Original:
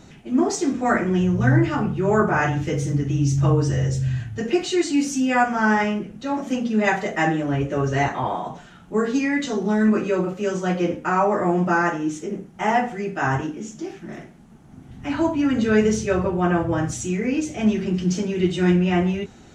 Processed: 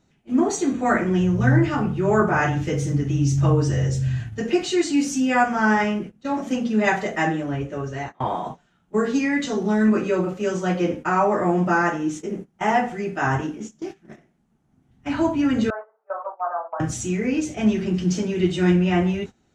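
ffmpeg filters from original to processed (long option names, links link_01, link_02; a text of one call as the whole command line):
ffmpeg -i in.wav -filter_complex "[0:a]asettb=1/sr,asplit=3[link_01][link_02][link_03];[link_01]atrim=end=0.404[link_04];[link_02]atrim=start=0.4:end=1.01,asetpts=PTS-STARTPTS,afade=type=in:duration=0.004:curve=qsin,afade=type=out:start_time=0.606:duration=0.004:curve=qsin,asuperstop=centerf=5200:order=20:qfactor=7.3[link_05];[link_03]atrim=start=1.006[link_06];[link_04][link_05]acrossfade=duration=0.004:curve1=hsin:curve2=qsin[link_07];[link_07][link_06]acrossfade=duration=0.004:curve1=qsin:curve2=hsin,asettb=1/sr,asplit=3[link_08][link_09][link_10];[link_08]atrim=end=15.704[link_11];[link_09]atrim=start=15.7:end=16.8,asetpts=PTS-STARTPTS,afade=type=in:duration=0.004:curve=qsin,afade=type=out:start_time=1.096:duration=0.004:curve=qsin,asuperpass=centerf=900:order=8:qfactor=1.2[link_12];[link_10]atrim=start=16.796[link_13];[link_11][link_12]acrossfade=duration=0.004:curve1=hsin:curve2=qsin[link_14];[link_14][link_13]acrossfade=duration=0.004:curve1=qsin:curve2=hsin,asplit=2[link_15][link_16];[link_15]atrim=end=8.2,asetpts=PTS-STARTPTS,afade=type=out:start_time=7.01:duration=1.19:silence=0.211349[link_17];[link_16]atrim=start=8.2,asetpts=PTS-STARTPTS,afade=type=in:duration=0.004:curve=hsin:silence=0.211349[link_18];[link_17][link_18]concat=n=2:v=0:a=1,agate=range=-18dB:threshold=-32dB:ratio=16:detection=peak" out.wav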